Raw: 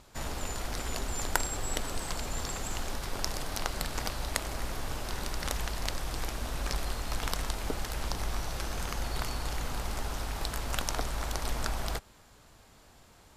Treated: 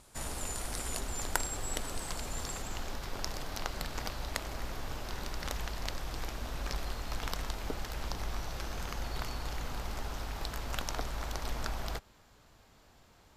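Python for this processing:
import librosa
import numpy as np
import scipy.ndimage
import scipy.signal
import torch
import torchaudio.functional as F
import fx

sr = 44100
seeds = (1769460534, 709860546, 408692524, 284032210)

y = fx.peak_eq(x, sr, hz=9500.0, db=fx.steps((0.0, 11.5), (1.0, 3.0), (2.62, -7.0)), octaves=0.65)
y = F.gain(torch.from_numpy(y), -3.5).numpy()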